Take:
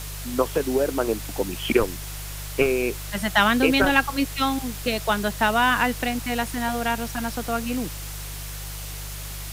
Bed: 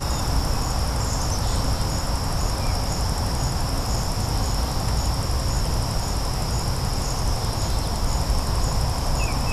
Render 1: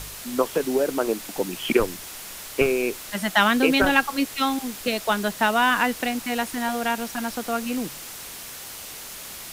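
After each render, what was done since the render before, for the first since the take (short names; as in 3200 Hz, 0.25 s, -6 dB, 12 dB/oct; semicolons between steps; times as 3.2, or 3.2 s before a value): de-hum 50 Hz, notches 3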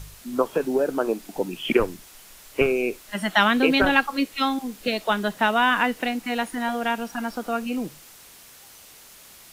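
noise print and reduce 10 dB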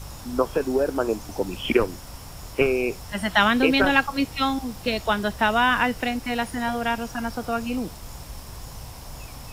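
add bed -16.5 dB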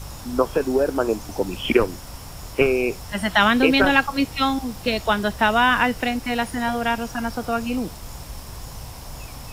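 gain +2.5 dB; limiter -2 dBFS, peak gain reduction 1.5 dB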